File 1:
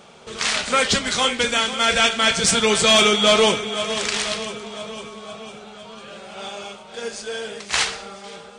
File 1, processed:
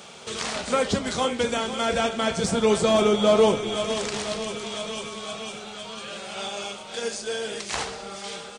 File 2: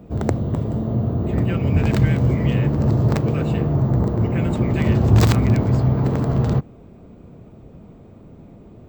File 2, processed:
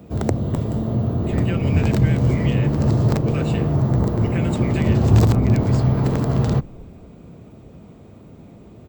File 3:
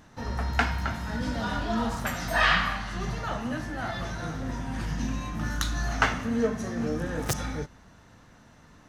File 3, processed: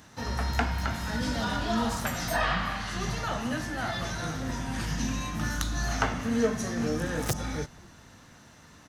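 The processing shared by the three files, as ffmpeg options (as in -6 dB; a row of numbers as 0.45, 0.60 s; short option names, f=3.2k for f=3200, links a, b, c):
-filter_complex "[0:a]highpass=f=48:w=0.5412,highpass=f=48:w=1.3066,highshelf=f=2.5k:g=8.5,acrossover=split=1000[a][b];[a]asplit=5[c][d][e][f][g];[d]adelay=241,afreqshift=-100,volume=-22.5dB[h];[e]adelay=482,afreqshift=-200,volume=-27.5dB[i];[f]adelay=723,afreqshift=-300,volume=-32.6dB[j];[g]adelay=964,afreqshift=-400,volume=-37.6dB[k];[c][h][i][j][k]amix=inputs=5:normalize=0[l];[b]acompressor=threshold=-32dB:ratio=6[m];[l][m]amix=inputs=2:normalize=0"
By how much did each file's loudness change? -7.5, 0.0, -1.0 LU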